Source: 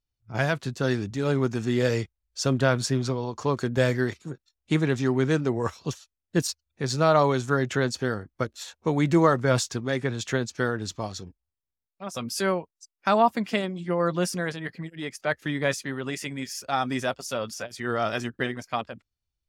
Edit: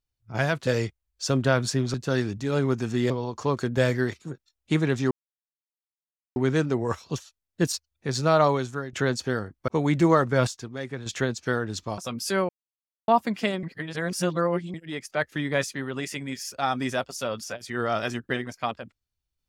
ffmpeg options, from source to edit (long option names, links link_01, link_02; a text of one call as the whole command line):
ffmpeg -i in.wav -filter_complex "[0:a]asplit=14[link_01][link_02][link_03][link_04][link_05][link_06][link_07][link_08][link_09][link_10][link_11][link_12][link_13][link_14];[link_01]atrim=end=0.672[link_15];[link_02]atrim=start=1.828:end=3.102[link_16];[link_03]atrim=start=0.668:end=1.832[link_17];[link_04]atrim=start=3.098:end=5.11,asetpts=PTS-STARTPTS,afade=type=out:start_time=2.008:duration=0.004:curve=hsin,apad=pad_dur=1.25[link_18];[link_05]atrim=start=5.11:end=7.68,asetpts=PTS-STARTPTS,afade=type=in:duration=0.004:curve=hsin,afade=type=out:start_time=2.08:duration=0.49:silence=0.158489[link_19];[link_06]atrim=start=7.68:end=8.432,asetpts=PTS-STARTPTS,afade=type=in:duration=0.004:curve=hsin:silence=0.158489[link_20];[link_07]atrim=start=8.798:end=9.592[link_21];[link_08]atrim=start=9.588:end=10.182,asetpts=PTS-STARTPTS,volume=-7dB[link_22];[link_09]atrim=start=10.178:end=11.102[link_23];[link_10]atrim=start=12.078:end=12.59,asetpts=PTS-STARTPTS,afade=type=out:start_time=0.508:duration=0.004:curve=hsin[link_24];[link_11]atrim=start=12.59:end=13.18,asetpts=PTS-STARTPTS,volume=0[link_25];[link_12]atrim=start=13.18:end=13.732,asetpts=PTS-STARTPTS,afade=type=in:duration=0.004:curve=hsin[link_26];[link_13]atrim=start=13.728:end=14.842,asetpts=PTS-STARTPTS,areverse[link_27];[link_14]atrim=start=14.838[link_28];[link_15][link_16]acrossfade=duration=0.004:curve1=hsin:curve2=hsin[link_29];[link_29][link_17]acrossfade=duration=0.004:curve1=hsin:curve2=hsin[link_30];[link_18][link_19][link_20]concat=n=3:v=0:a=1[link_31];[link_30][link_31]acrossfade=duration=0.004:curve1=hsin:curve2=hsin[link_32];[link_32][link_21]acrossfade=duration=0.004:curve1=hsin:curve2=hsin[link_33];[link_33][link_22]acrossfade=duration=0.004:curve1=hsin:curve2=hsin[link_34];[link_34][link_23]acrossfade=duration=0.004:curve1=hsin:curve2=hsin[link_35];[link_24][link_25][link_26]concat=n=3:v=0:a=1[link_36];[link_35][link_36]acrossfade=duration=0.004:curve1=hsin:curve2=hsin[link_37];[link_37][link_27]acrossfade=duration=0.004:curve1=hsin:curve2=hsin[link_38];[link_38][link_28]acrossfade=duration=0.004:curve1=hsin:curve2=hsin" out.wav